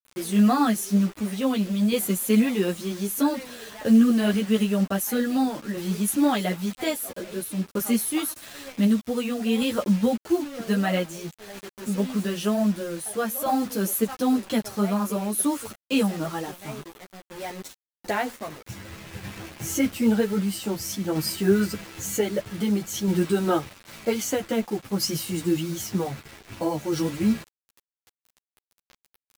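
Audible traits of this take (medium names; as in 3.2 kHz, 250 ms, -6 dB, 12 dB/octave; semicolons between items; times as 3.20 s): a quantiser's noise floor 6-bit, dither none; tremolo saw down 0.52 Hz, depth 40%; a shimmering, thickened sound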